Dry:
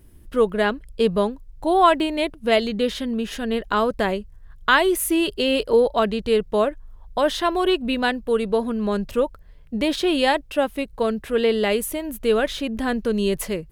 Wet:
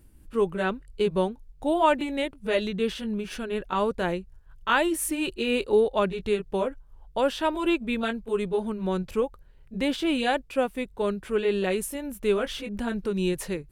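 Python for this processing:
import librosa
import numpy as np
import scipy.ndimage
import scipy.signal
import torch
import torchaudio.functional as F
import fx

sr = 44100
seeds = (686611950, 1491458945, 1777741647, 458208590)

y = fx.pitch_heads(x, sr, semitones=-1.5)
y = F.gain(torch.from_numpy(y), -4.0).numpy()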